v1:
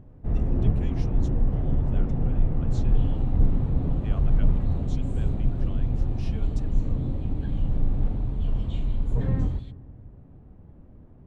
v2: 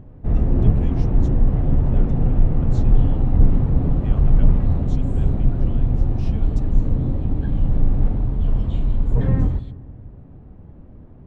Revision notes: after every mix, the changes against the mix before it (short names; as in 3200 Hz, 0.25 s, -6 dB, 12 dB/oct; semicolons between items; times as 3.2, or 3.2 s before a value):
first sound +6.5 dB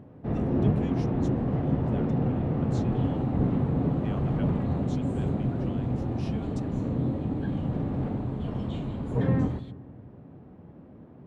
master: add HPF 160 Hz 12 dB/oct